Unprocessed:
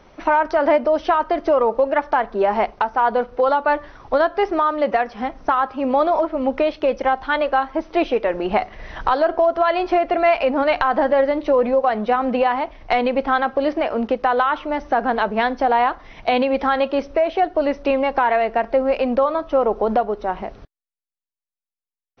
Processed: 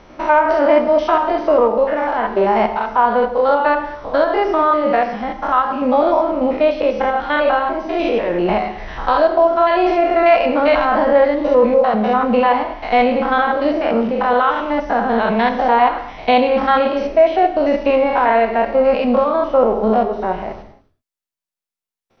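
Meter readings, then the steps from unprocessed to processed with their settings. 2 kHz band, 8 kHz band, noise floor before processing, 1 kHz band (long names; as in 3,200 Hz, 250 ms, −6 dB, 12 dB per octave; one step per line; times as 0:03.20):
+3.0 dB, can't be measured, below −85 dBFS, +3.5 dB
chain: spectrum averaged block by block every 100 ms
reverb whose tail is shaped and stops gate 310 ms falling, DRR 6.5 dB
level +5.5 dB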